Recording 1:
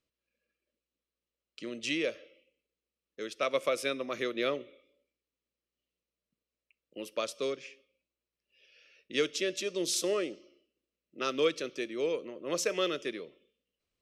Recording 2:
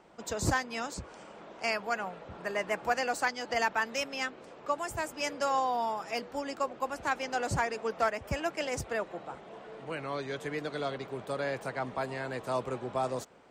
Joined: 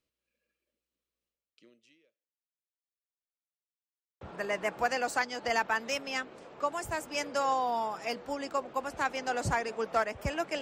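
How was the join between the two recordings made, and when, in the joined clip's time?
recording 1
1.27–3.22 s: fade out exponential
3.22–4.21 s: mute
4.21 s: go over to recording 2 from 2.27 s

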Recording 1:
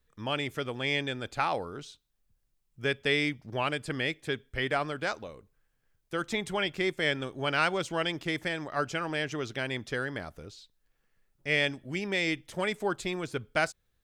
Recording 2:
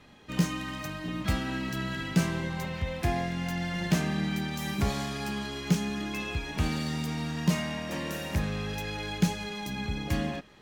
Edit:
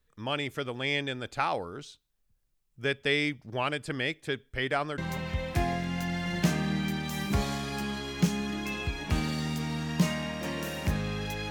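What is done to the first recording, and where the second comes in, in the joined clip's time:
recording 1
4.98 s: go over to recording 2 from 2.46 s

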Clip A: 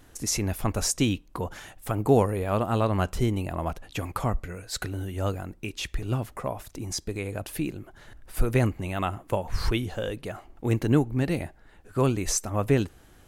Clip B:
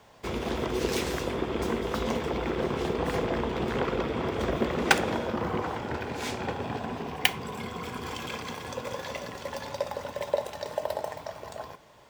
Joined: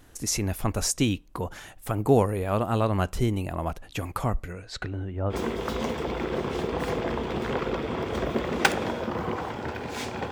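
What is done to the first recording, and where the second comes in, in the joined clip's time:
clip A
4.52–5.35 s: low-pass 7.2 kHz -> 1 kHz
5.32 s: go over to clip B from 1.58 s, crossfade 0.06 s

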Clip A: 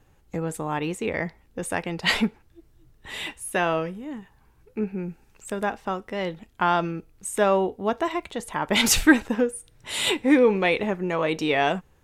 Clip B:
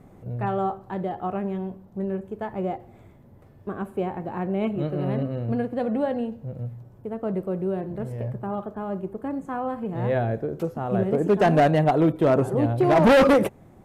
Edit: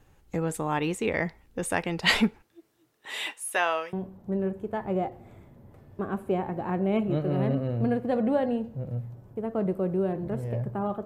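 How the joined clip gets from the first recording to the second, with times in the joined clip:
clip A
2.42–3.93 s: high-pass 230 Hz -> 800 Hz
3.93 s: go over to clip B from 1.61 s

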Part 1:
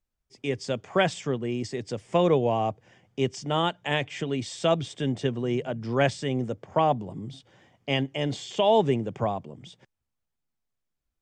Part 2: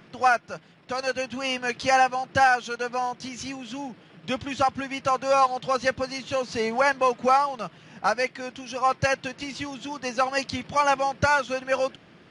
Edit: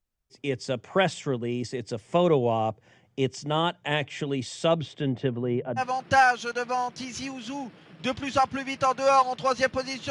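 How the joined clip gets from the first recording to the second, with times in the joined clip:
part 1
4.68–5.84 s: low-pass 5.9 kHz -> 1.2 kHz
5.80 s: go over to part 2 from 2.04 s, crossfade 0.08 s

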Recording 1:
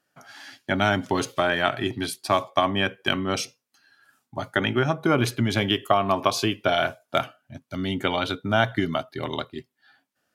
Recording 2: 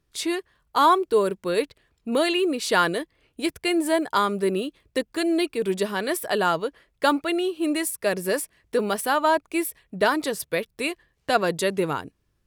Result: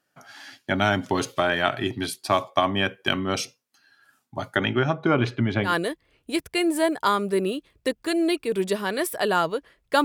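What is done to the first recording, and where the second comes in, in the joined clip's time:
recording 1
4.58–5.75 s: low-pass 7.5 kHz -> 1.8 kHz
5.69 s: go over to recording 2 from 2.79 s, crossfade 0.12 s

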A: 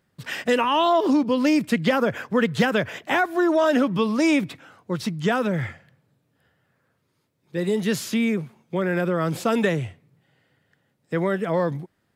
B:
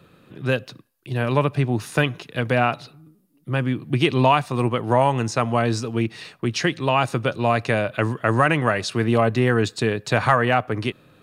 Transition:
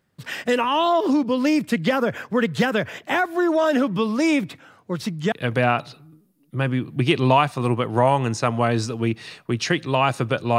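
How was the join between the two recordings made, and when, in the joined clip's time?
A
5.32 s: go over to B from 2.26 s

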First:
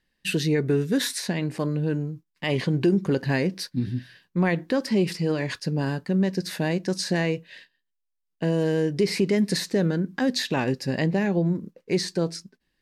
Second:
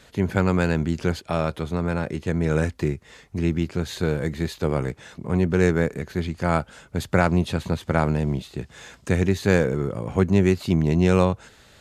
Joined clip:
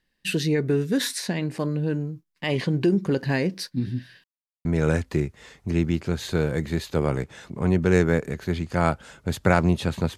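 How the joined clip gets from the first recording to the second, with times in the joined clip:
first
4.24–4.65 s: mute
4.65 s: go over to second from 2.33 s

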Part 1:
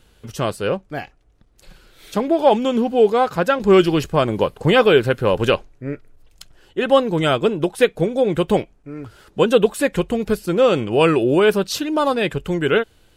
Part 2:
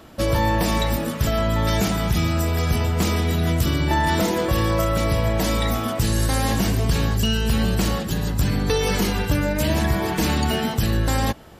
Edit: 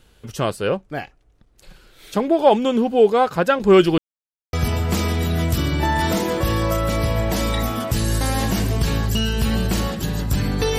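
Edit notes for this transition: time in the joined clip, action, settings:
part 1
3.98–4.53 s: mute
4.53 s: go over to part 2 from 2.61 s

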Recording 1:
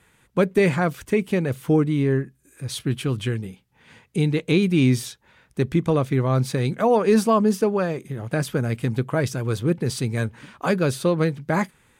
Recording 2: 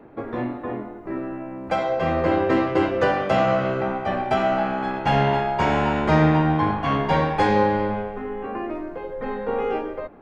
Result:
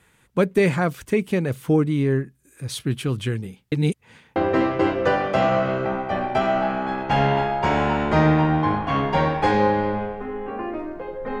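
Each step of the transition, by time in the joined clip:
recording 1
3.72–4.36 s: reverse
4.36 s: go over to recording 2 from 2.32 s

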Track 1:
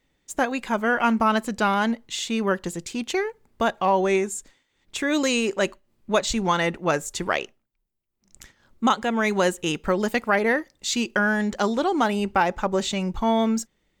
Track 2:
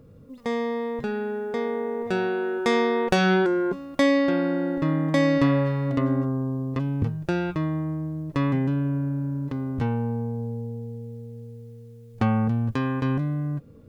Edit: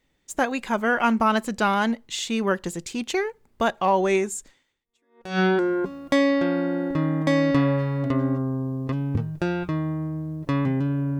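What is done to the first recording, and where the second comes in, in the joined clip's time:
track 1
5.04 s: go over to track 2 from 2.91 s, crossfade 0.70 s exponential

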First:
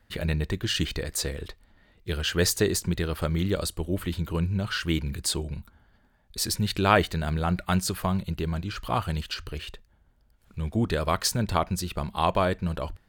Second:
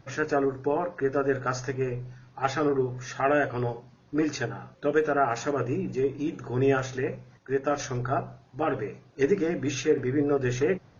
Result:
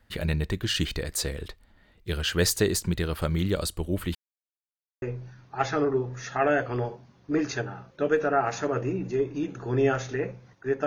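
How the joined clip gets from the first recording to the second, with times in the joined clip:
first
4.15–5.02 s: mute
5.02 s: go over to second from 1.86 s

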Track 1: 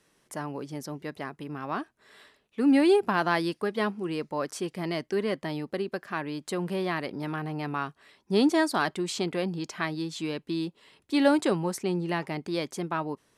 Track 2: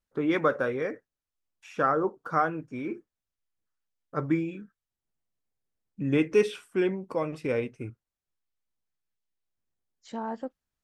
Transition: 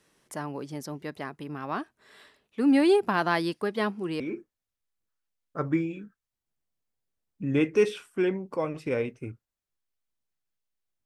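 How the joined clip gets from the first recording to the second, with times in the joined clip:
track 1
4.20 s: go over to track 2 from 2.78 s

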